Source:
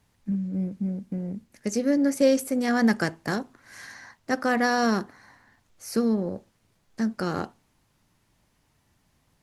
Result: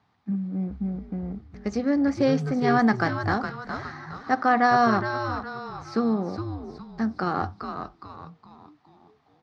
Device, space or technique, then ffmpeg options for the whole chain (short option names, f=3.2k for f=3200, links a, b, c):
frequency-shifting delay pedal into a guitar cabinet: -filter_complex "[0:a]asplit=6[a][b][c][d][e][f];[b]adelay=414,afreqshift=-130,volume=-6.5dB[g];[c]adelay=828,afreqshift=-260,volume=-13.8dB[h];[d]adelay=1242,afreqshift=-390,volume=-21.2dB[i];[e]adelay=1656,afreqshift=-520,volume=-28.5dB[j];[f]adelay=2070,afreqshift=-650,volume=-35.8dB[k];[a][g][h][i][j][k]amix=inputs=6:normalize=0,highpass=110,equalizer=f=540:t=q:w=4:g=-5,equalizer=f=770:t=q:w=4:g=9,equalizer=f=1.2k:t=q:w=4:g=8,equalizer=f=2.8k:t=q:w=4:g=-4,lowpass=f=4.5k:w=0.5412,lowpass=f=4.5k:w=1.3066"